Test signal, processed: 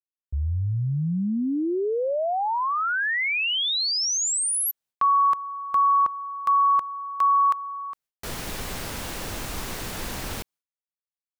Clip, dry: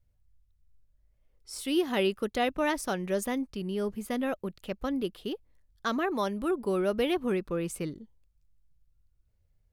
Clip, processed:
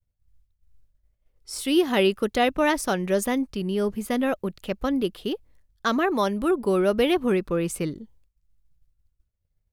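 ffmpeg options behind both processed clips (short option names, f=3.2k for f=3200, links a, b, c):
-af "agate=range=-33dB:threshold=-58dB:ratio=3:detection=peak,volume=6.5dB"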